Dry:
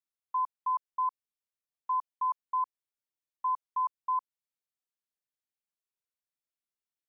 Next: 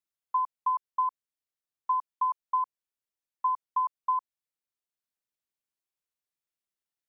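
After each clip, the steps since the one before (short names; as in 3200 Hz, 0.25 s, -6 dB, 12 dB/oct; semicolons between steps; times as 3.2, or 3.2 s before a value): transient shaper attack +5 dB, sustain -2 dB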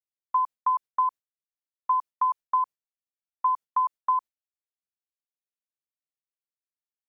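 gate with hold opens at -32 dBFS; gain +3.5 dB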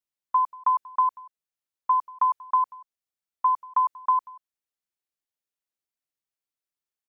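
echo 0.186 s -22.5 dB; gain +2 dB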